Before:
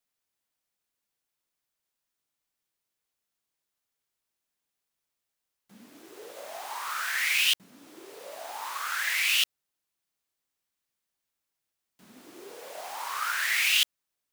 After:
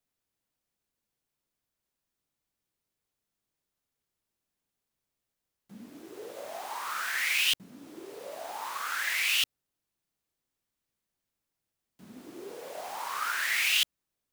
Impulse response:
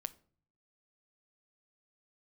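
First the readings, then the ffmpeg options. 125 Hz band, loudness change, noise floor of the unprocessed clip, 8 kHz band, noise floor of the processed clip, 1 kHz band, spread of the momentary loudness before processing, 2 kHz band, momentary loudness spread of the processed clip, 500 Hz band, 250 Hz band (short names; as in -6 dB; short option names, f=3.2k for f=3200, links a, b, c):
n/a, -2.5 dB, -85 dBFS, -2.5 dB, under -85 dBFS, -1.0 dB, 21 LU, -2.0 dB, 21 LU, +2.0 dB, +5.0 dB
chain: -af "lowshelf=f=470:g=10.5,volume=-2.5dB"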